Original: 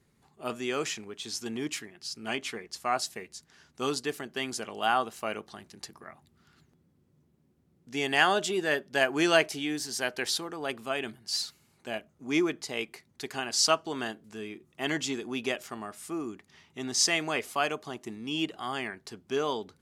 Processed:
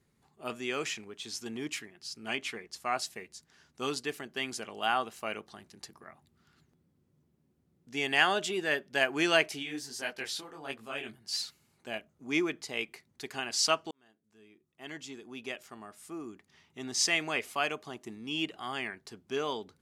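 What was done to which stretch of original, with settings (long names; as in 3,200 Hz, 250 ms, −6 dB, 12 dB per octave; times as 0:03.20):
0:09.62–0:11.08: micro pitch shift up and down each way 31 cents → 51 cents
0:13.91–0:17.02: fade in
whole clip: dynamic equaliser 2,400 Hz, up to +5 dB, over −44 dBFS, Q 1.4; level −4 dB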